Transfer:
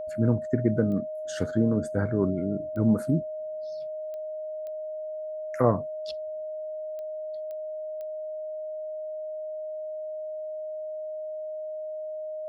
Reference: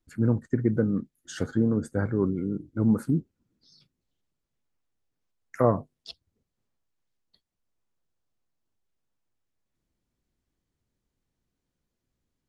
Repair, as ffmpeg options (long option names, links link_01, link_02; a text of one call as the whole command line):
ffmpeg -i in.wav -af "adeclick=threshold=4,bandreject=frequency=620:width=30" out.wav